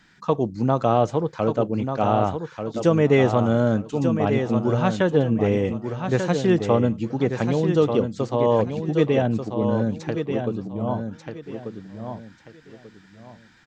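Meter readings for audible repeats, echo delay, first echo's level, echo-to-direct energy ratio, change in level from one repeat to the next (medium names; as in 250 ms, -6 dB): 3, 1189 ms, -7.0 dB, -6.5 dB, -11.5 dB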